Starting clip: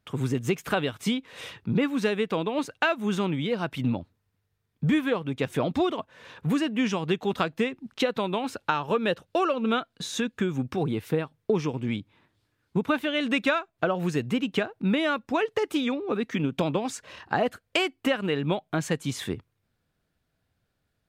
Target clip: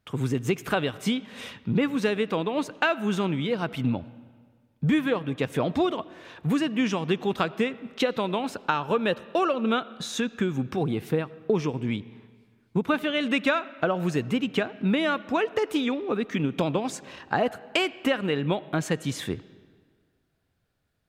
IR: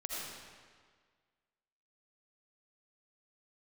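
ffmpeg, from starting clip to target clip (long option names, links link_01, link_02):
-filter_complex "[0:a]asplit=2[link_01][link_02];[1:a]atrim=start_sample=2205,lowpass=4400[link_03];[link_02][link_03]afir=irnorm=-1:irlink=0,volume=-18.5dB[link_04];[link_01][link_04]amix=inputs=2:normalize=0"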